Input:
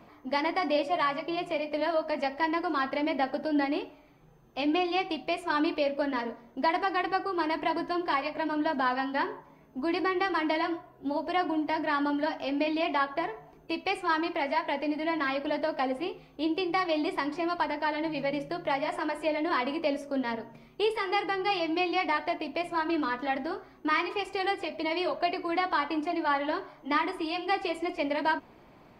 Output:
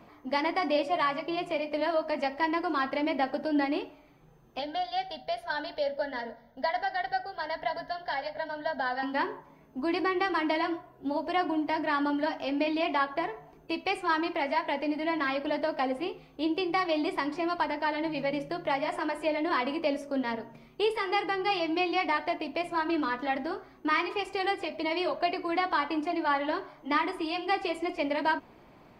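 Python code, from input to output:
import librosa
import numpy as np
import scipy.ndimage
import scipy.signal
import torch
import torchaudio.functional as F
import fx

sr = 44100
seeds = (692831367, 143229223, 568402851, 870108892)

y = fx.fixed_phaser(x, sr, hz=1700.0, stages=8, at=(4.59, 9.03))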